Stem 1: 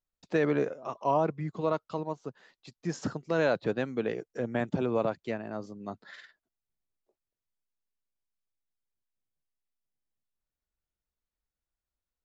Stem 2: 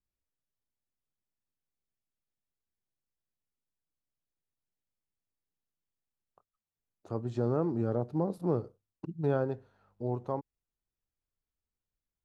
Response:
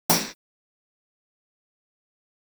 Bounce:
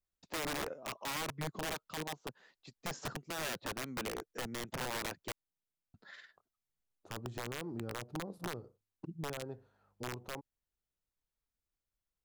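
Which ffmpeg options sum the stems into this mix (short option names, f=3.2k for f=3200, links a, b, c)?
-filter_complex "[0:a]alimiter=limit=-22dB:level=0:latency=1:release=101,adynamicequalizer=threshold=0.00355:dfrequency=2400:dqfactor=0.7:tfrequency=2400:tqfactor=0.7:attack=5:release=100:ratio=0.375:range=2:mode=cutabove:tftype=highshelf,volume=-4.5dB,asplit=3[a][b][c];[a]atrim=end=5.32,asetpts=PTS-STARTPTS,afade=t=out:st=5.316:d=0.004:c=hsin[d];[b]atrim=start=5.32:end=5.94,asetpts=PTS-STARTPTS,volume=0[e];[c]atrim=start=5.94,asetpts=PTS-STARTPTS,afade=t=in:d=0.004:c=hsin[f];[d][e][f]concat=n=3:v=0:a=1[g];[1:a]acompressor=threshold=-32dB:ratio=12,volume=-4.5dB[h];[g][h]amix=inputs=2:normalize=0,aeval=exprs='(mod(39.8*val(0)+1,2)-1)/39.8':c=same"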